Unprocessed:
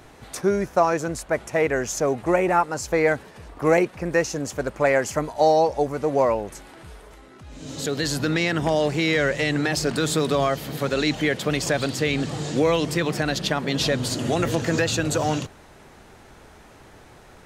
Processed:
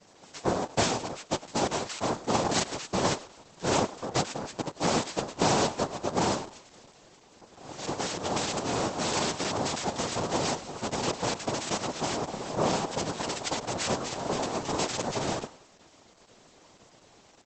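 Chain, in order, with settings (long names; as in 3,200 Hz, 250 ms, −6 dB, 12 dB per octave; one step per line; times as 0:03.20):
cochlear-implant simulation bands 2
echo with shifted repeats 102 ms, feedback 32%, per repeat +99 Hz, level −18 dB
level −7 dB
Opus 10 kbit/s 48,000 Hz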